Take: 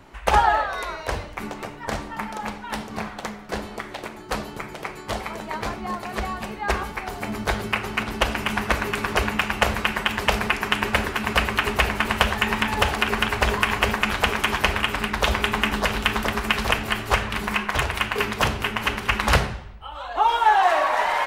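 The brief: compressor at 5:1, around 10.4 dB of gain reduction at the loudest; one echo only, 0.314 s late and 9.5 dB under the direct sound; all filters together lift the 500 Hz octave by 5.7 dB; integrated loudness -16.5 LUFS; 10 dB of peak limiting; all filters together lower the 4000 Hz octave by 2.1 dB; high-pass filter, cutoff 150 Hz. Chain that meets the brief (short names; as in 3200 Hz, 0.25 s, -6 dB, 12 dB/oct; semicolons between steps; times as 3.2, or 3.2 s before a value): HPF 150 Hz; bell 500 Hz +7.5 dB; bell 4000 Hz -3.5 dB; compressor 5:1, threshold -23 dBFS; limiter -17.5 dBFS; echo 0.314 s -9.5 dB; gain +13 dB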